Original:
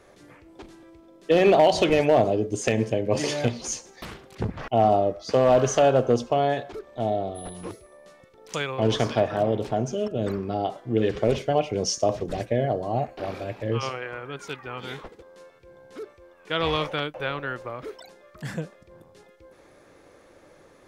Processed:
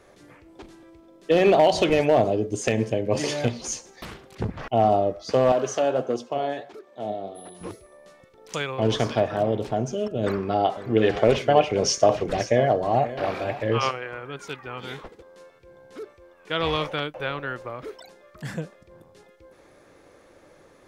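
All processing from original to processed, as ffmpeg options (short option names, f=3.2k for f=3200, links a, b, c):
-filter_complex "[0:a]asettb=1/sr,asplit=3[a][b][c];[a]atrim=end=5.524[d];[b]atrim=start=5.52:end=7.61,asetpts=PTS-STARTPTS,afade=t=in:d=0.004:c=qsin,afade=t=out:st=2.086:d=0.004:c=qsin,highpass=190,flanger=delay=2.6:depth=8.3:regen=60:speed=1.5:shape=sinusoidal[e];[c]atrim=start=7.606[f];[d][e]acrossfade=d=0.004:c1=hsin:c2=qsin[g];[g][f]acrossfade=d=0.004:c1=qsin:c2=hsin,asettb=1/sr,asplit=3[h][i][j];[h]atrim=end=10.234[k];[i]atrim=start=10.23:end=13.91,asetpts=PTS-STARTPTS,afade=t=in:d=0.004:c=qsin,afade=t=out:st=3.676:d=0.004:c=qsin,equalizer=f=1.5k:w=0.36:g=8,aecho=1:1:538:0.188,atrim=end_sample=162288[l];[j]atrim=start=13.906[m];[k][l]acrossfade=d=0.004:c1=hsin:c2=qsin[n];[n][m]acrossfade=d=0.004:c1=qsin:c2=hsin"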